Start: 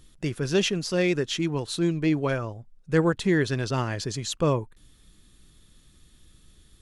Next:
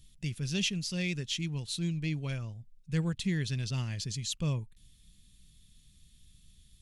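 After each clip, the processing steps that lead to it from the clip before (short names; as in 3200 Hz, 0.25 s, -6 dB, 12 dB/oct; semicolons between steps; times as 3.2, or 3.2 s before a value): band shelf 690 Hz -15 dB 2.9 oct; gain -3.5 dB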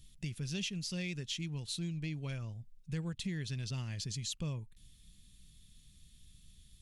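compressor 3:1, threshold -37 dBFS, peak gain reduction 9 dB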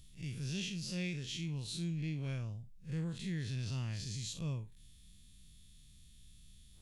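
time blur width 0.102 s; gain +1.5 dB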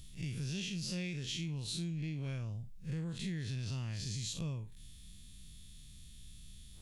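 compressor, threshold -42 dBFS, peak gain reduction 8 dB; gain +6 dB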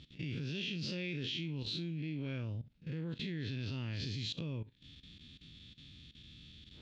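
speaker cabinet 120–3900 Hz, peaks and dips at 130 Hz -4 dB, 190 Hz -7 dB, 280 Hz +5 dB, 730 Hz -8 dB, 1100 Hz -7 dB, 1900 Hz -3 dB; level quantiser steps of 16 dB; gain +9 dB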